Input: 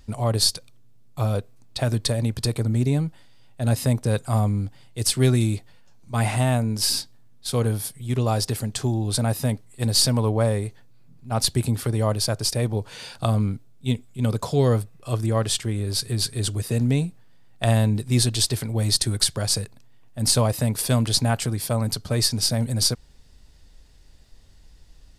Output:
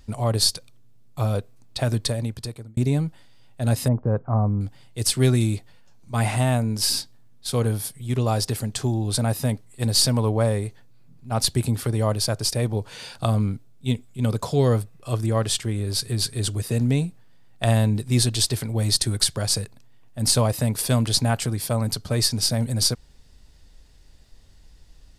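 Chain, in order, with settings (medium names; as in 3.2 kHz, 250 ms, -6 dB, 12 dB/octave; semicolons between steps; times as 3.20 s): 1.97–2.77 s: fade out; 3.88–4.61 s: low-pass 1.3 kHz 24 dB/octave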